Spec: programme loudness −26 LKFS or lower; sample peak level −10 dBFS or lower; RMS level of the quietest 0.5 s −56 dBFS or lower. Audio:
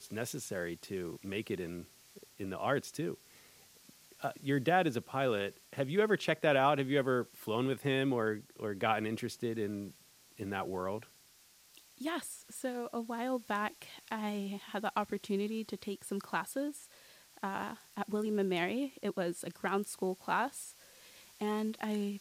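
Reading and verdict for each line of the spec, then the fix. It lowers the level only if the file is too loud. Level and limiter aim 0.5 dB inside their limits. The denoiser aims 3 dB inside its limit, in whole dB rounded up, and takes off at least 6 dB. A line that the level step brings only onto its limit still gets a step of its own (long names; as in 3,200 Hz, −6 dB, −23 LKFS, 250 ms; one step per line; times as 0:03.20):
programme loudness −35.5 LKFS: in spec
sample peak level −14.0 dBFS: in spec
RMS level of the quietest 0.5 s −63 dBFS: in spec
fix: no processing needed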